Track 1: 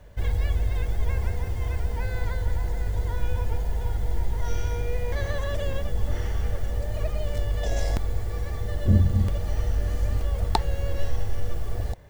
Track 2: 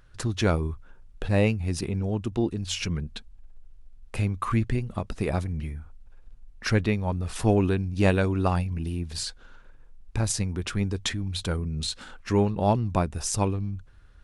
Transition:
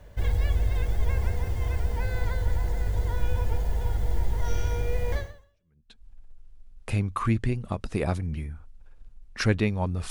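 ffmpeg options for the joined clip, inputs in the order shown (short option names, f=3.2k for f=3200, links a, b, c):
-filter_complex "[0:a]apad=whole_dur=10.1,atrim=end=10.1,atrim=end=6.04,asetpts=PTS-STARTPTS[a];[1:a]atrim=start=2.42:end=7.36,asetpts=PTS-STARTPTS[b];[a][b]acrossfade=d=0.88:c1=exp:c2=exp"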